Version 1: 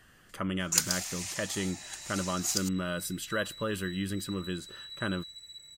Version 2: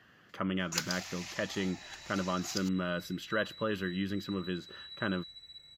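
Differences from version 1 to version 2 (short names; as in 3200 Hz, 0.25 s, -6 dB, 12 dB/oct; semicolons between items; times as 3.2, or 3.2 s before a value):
speech: add HPF 120 Hz 12 dB/oct; master: add running mean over 5 samples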